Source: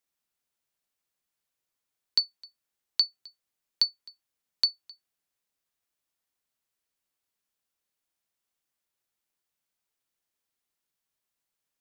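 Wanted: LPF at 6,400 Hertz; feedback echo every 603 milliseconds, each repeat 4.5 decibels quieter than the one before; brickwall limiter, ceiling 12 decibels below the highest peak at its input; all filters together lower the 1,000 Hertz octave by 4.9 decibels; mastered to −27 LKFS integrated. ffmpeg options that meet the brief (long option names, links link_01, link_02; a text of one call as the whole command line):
ffmpeg -i in.wav -af "lowpass=6400,equalizer=frequency=1000:width_type=o:gain=-6.5,alimiter=level_in=0.5dB:limit=-24dB:level=0:latency=1,volume=-0.5dB,aecho=1:1:603|1206|1809|2412|3015|3618|4221|4824|5427:0.596|0.357|0.214|0.129|0.0772|0.0463|0.0278|0.0167|0.01,volume=11.5dB" out.wav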